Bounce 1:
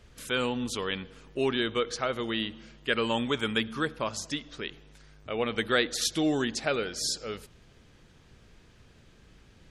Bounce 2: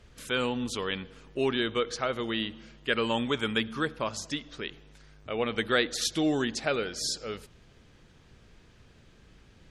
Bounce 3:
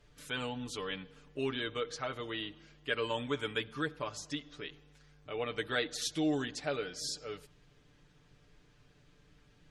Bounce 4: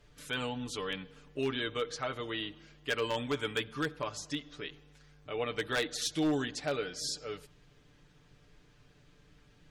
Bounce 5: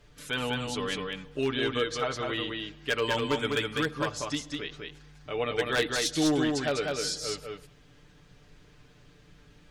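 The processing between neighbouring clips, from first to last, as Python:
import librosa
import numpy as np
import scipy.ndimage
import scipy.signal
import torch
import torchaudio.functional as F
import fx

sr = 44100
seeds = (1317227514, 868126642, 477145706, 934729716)

y1 = fx.high_shelf(x, sr, hz=11000.0, db=-6.5)
y2 = y1 + 0.7 * np.pad(y1, (int(6.8 * sr / 1000.0), 0))[:len(y1)]
y2 = y2 * librosa.db_to_amplitude(-8.5)
y3 = 10.0 ** (-25.0 / 20.0) * (np.abs((y2 / 10.0 ** (-25.0 / 20.0) + 3.0) % 4.0 - 2.0) - 1.0)
y3 = y3 * librosa.db_to_amplitude(2.0)
y4 = y3 + 10.0 ** (-3.5 / 20.0) * np.pad(y3, (int(201 * sr / 1000.0), 0))[:len(y3)]
y4 = y4 * librosa.db_to_amplitude(4.0)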